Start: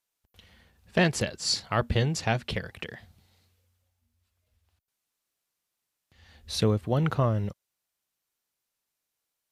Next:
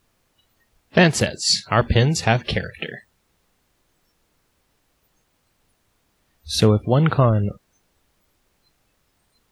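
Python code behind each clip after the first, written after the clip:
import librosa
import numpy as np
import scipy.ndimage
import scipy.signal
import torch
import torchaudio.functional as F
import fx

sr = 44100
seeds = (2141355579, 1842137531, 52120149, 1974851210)

y = fx.dmg_noise_colour(x, sr, seeds[0], colour='pink', level_db=-47.0)
y = fx.noise_reduce_blind(y, sr, reduce_db=28)
y = y * librosa.db_to_amplitude(8.5)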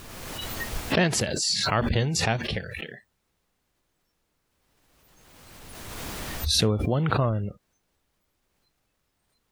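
y = fx.pre_swell(x, sr, db_per_s=25.0)
y = y * librosa.db_to_amplitude(-8.5)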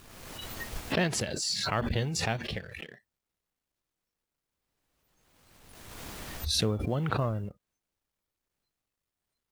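y = fx.law_mismatch(x, sr, coded='A')
y = y * librosa.db_to_amplitude(-5.0)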